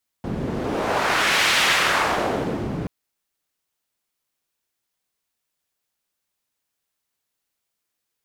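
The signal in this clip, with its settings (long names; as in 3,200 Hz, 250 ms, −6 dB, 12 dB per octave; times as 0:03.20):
wind from filtered noise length 2.63 s, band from 200 Hz, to 2,400 Hz, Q 1, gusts 1, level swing 9 dB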